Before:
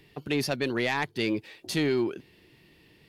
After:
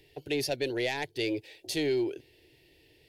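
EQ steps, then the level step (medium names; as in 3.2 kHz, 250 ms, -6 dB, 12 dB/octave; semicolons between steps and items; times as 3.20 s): static phaser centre 490 Hz, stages 4; 0.0 dB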